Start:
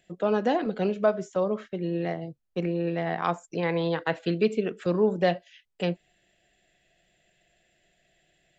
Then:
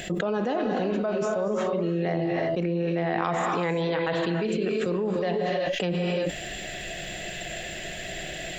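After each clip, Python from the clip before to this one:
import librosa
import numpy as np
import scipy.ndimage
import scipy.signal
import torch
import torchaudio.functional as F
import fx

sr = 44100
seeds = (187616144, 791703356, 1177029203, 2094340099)

y = fx.rev_gated(x, sr, seeds[0], gate_ms=370, shape='rising', drr_db=5.0)
y = fx.env_flatten(y, sr, amount_pct=100)
y = F.gain(torch.from_numpy(y), -8.5).numpy()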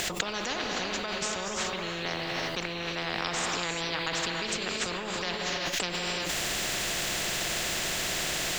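y = fx.spectral_comp(x, sr, ratio=4.0)
y = F.gain(torch.from_numpy(y), 2.5).numpy()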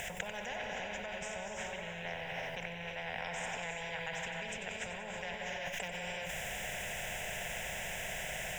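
y = fx.high_shelf(x, sr, hz=4300.0, db=-5.0)
y = fx.fixed_phaser(y, sr, hz=1200.0, stages=6)
y = fx.echo_feedback(y, sr, ms=93, feedback_pct=59, wet_db=-10.5)
y = F.gain(torch.from_numpy(y), -5.0).numpy()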